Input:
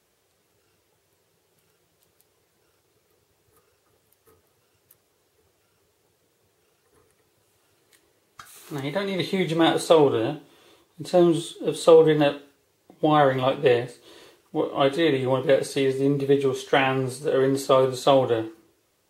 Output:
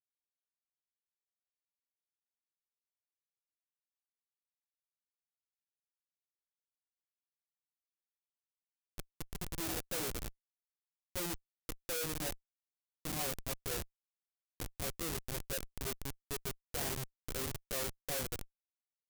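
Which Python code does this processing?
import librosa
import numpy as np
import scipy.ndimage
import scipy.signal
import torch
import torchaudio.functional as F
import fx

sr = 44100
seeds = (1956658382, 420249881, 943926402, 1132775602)

y = fx.spec_delay(x, sr, highs='late', ms=262)
y = fx.schmitt(y, sr, flips_db=-19.0)
y = scipy.signal.lfilter([1.0, -0.8], [1.0], y)
y = F.gain(torch.from_numpy(y), -1.5).numpy()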